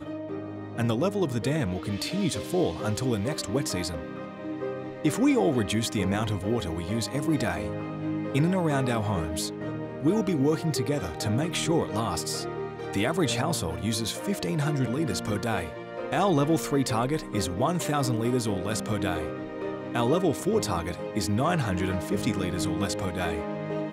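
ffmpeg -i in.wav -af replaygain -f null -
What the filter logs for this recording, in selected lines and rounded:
track_gain = +8.3 dB
track_peak = 0.164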